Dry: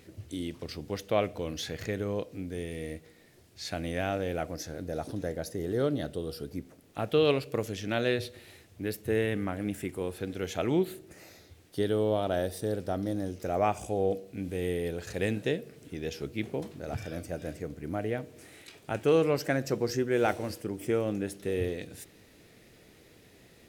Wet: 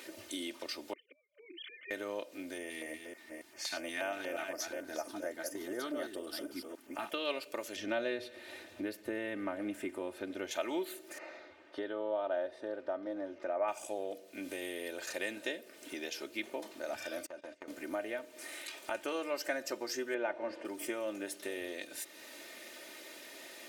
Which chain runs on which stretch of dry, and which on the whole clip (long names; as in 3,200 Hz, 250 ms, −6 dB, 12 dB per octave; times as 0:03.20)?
0:00.93–0:01.91: three sine waves on the formant tracks + gate with flip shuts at −25 dBFS, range −34 dB + formant filter i
0:02.58–0:07.14: delay that plays each chunk backwards 278 ms, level −7 dB + auto-filter notch square 4.2 Hz 550–3,900 Hz + one half of a high-frequency compander decoder only
0:07.76–0:10.51: spectral tilt −3 dB per octave + delay with a high-pass on its return 115 ms, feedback 72%, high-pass 1,800 Hz, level −21.5 dB
0:11.18–0:13.68: low-pass filter 1,800 Hz + parametric band 160 Hz −5 dB 1.2 octaves
0:17.26–0:17.68: noise gate −41 dBFS, range −25 dB + high-frequency loss of the air 73 metres + downward compressor 10 to 1, threshold −43 dBFS
0:20.14–0:20.65: low-pass filter 1,900 Hz + notch filter 1,300 Hz, Q 11 + multiband upward and downward compressor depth 70%
whole clip: high-pass filter 550 Hz 12 dB per octave; downward compressor 2 to 1, threshold −55 dBFS; comb filter 3.3 ms, depth 75%; level +9 dB